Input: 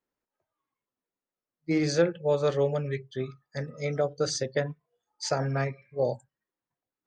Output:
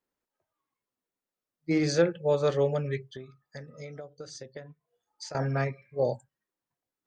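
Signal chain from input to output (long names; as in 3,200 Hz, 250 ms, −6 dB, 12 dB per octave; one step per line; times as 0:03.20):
0:03.12–0:05.35: downward compressor 8 to 1, threshold −40 dBFS, peak gain reduction 18 dB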